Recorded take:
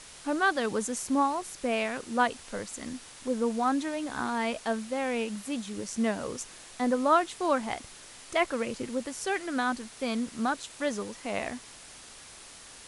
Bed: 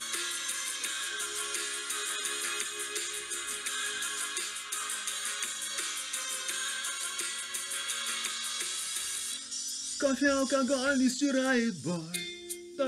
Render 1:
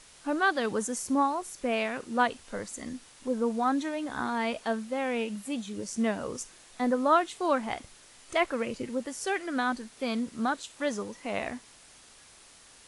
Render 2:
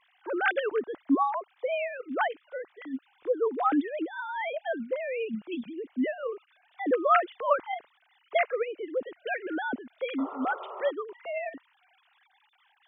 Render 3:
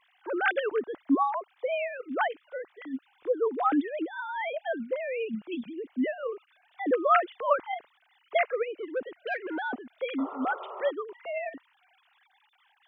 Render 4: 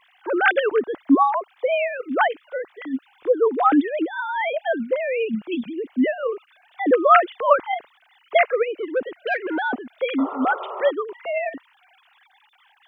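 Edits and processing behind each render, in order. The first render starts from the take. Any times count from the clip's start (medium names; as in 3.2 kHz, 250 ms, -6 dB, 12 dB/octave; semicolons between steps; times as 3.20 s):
noise print and reduce 6 dB
formants replaced by sine waves; 10.18–10.91 s: painted sound noise 360–1400 Hz -40 dBFS
8.78–9.96 s: transformer saturation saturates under 650 Hz
trim +8.5 dB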